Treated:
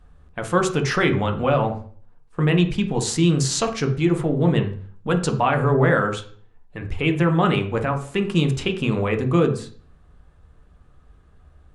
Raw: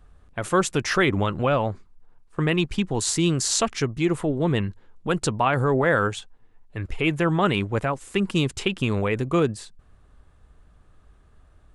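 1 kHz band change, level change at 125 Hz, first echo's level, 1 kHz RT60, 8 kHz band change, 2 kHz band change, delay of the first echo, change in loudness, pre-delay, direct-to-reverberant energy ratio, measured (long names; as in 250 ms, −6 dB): +2.0 dB, +4.5 dB, no echo audible, 0.45 s, −2.0 dB, +0.5 dB, no echo audible, +2.5 dB, 3 ms, 4.0 dB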